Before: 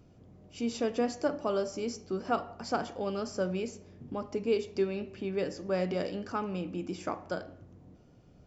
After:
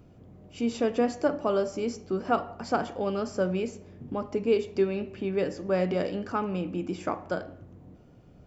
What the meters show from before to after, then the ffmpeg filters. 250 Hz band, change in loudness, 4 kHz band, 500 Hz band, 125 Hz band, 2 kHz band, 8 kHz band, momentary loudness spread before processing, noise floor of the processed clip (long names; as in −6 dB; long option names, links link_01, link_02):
+4.5 dB, +4.5 dB, +1.0 dB, +4.5 dB, +4.5 dB, +4.0 dB, can't be measured, 8 LU, −54 dBFS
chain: -af "equalizer=frequency=5500:width_type=o:width=1.1:gain=-6.5,volume=4.5dB"